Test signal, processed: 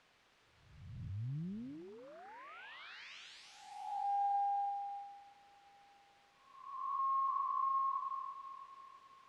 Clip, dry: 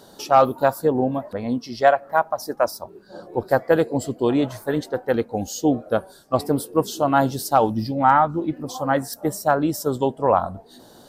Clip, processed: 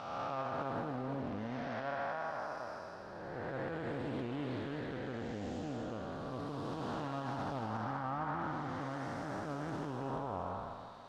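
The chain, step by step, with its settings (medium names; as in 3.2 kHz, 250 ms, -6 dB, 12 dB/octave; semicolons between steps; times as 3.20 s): spectral blur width 565 ms; peaking EQ 470 Hz -11 dB 2.3 oct; word length cut 10-bit, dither triangular; peak limiter -26 dBFS; low-pass 2.9 kHz 12 dB/octave; bass shelf 320 Hz -3 dB; thinning echo 330 ms, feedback 56%, high-pass 520 Hz, level -9.5 dB; loudspeaker Doppler distortion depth 0.27 ms; trim -2 dB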